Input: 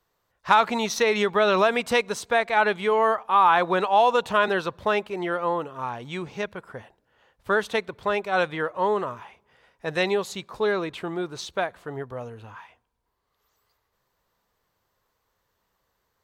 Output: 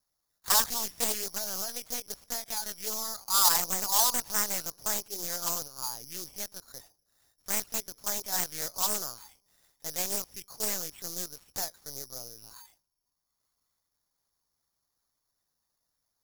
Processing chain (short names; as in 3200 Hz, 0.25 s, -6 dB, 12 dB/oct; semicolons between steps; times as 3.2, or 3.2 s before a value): dynamic EQ 910 Hz, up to +5 dB, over -37 dBFS, Q 7.3; 1.14–3.22 compressor 20:1, threshold -23 dBFS, peak gain reduction 11 dB; LPC vocoder at 8 kHz pitch kept; careless resampling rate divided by 8×, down filtered, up zero stuff; Doppler distortion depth 0.74 ms; gain -14.5 dB